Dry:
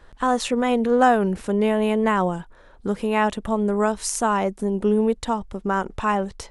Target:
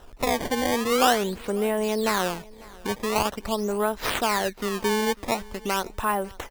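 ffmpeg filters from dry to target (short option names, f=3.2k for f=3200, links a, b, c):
-filter_complex "[0:a]acrossover=split=460|2200[a][b][c];[c]acompressor=mode=upward:threshold=-53dB:ratio=2.5[d];[a][b][d]amix=inputs=3:normalize=0,highshelf=f=7.7k:g=4.5,asplit=2[e][f];[f]acompressor=threshold=-31dB:ratio=6,volume=0.5dB[g];[e][g]amix=inputs=2:normalize=0,acrusher=samples=19:mix=1:aa=0.000001:lfo=1:lforange=30.4:lforate=0.45,equalizer=f=170:w=1.4:g=-6.5,aecho=1:1:547|1094:0.0708|0.0205,volume=-4.5dB"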